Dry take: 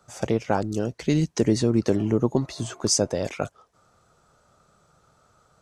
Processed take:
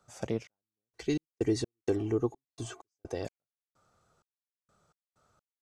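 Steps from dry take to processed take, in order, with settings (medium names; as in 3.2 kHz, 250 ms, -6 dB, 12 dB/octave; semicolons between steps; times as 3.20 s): 0.95–3.25 s: comb 2.6 ms, depth 70%; trance gate "xx..x.x.xx.x.x.." 64 bpm -60 dB; trim -9 dB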